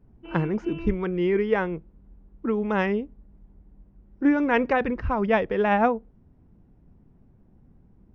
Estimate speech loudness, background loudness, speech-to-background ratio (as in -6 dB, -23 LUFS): -25.0 LUFS, -40.5 LUFS, 15.5 dB